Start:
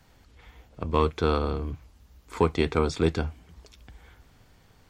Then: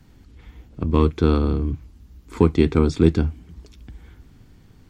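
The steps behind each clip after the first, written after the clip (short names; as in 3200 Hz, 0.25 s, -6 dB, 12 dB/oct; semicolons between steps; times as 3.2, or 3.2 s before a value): resonant low shelf 420 Hz +8.5 dB, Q 1.5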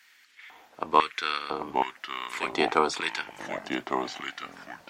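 LFO high-pass square 1 Hz 800–1900 Hz; echoes that change speed 0.634 s, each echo -3 st, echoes 3, each echo -6 dB; gain +3.5 dB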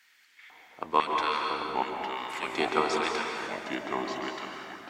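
plate-style reverb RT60 2.3 s, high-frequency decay 0.75×, pre-delay 0.12 s, DRR 1 dB; gain -4 dB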